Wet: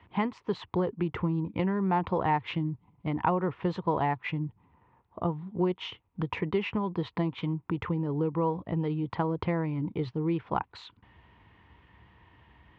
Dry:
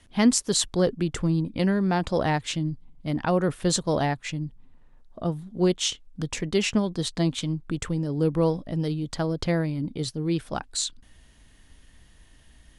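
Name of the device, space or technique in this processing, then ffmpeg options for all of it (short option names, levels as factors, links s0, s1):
bass amplifier: -af "acompressor=threshold=0.0447:ratio=5,highpass=f=78:w=0.5412,highpass=f=78:w=1.3066,equalizer=f=150:t=q:w=4:g=-4,equalizer=f=250:t=q:w=4:g=-10,equalizer=f=600:t=q:w=4:g=-8,equalizer=f=960:t=q:w=4:g=9,equalizer=f=1600:t=q:w=4:g=-7,lowpass=f=2400:w=0.5412,lowpass=f=2400:w=1.3066,volume=1.68"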